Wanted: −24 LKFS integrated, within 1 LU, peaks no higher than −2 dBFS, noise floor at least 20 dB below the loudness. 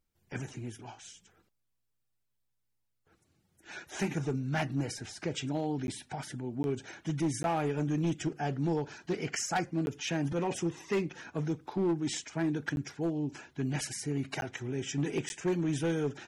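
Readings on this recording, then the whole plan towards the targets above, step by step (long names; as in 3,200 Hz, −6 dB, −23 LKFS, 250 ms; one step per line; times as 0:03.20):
share of clipped samples 1.4%; peaks flattened at −24.5 dBFS; number of dropouts 7; longest dropout 11 ms; integrated loudness −34.0 LKFS; sample peak −24.5 dBFS; target loudness −24.0 LKFS
→ clipped peaks rebuilt −24.5 dBFS
repair the gap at 0:05.87/0:06.63/0:07.43/0:09.86/0:12.76/0:14.41/0:15.29, 11 ms
level +10 dB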